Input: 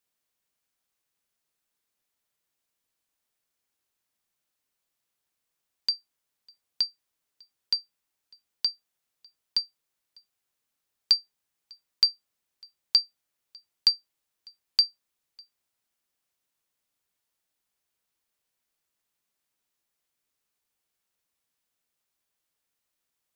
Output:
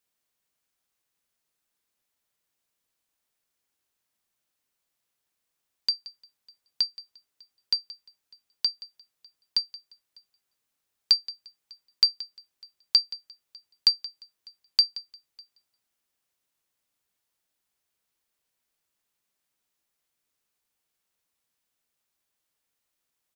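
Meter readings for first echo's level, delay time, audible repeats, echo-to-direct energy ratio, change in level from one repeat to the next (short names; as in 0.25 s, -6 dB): -18.0 dB, 0.175 s, 2, -17.5 dB, -12.5 dB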